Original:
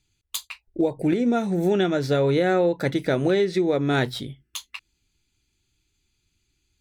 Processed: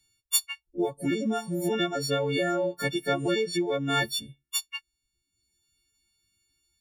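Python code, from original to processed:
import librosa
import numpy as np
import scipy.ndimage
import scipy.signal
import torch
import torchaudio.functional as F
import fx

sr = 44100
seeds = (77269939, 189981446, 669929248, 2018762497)

y = fx.freq_snap(x, sr, grid_st=4)
y = fx.dereverb_blind(y, sr, rt60_s=0.97)
y = y * librosa.db_to_amplitude(-5.0)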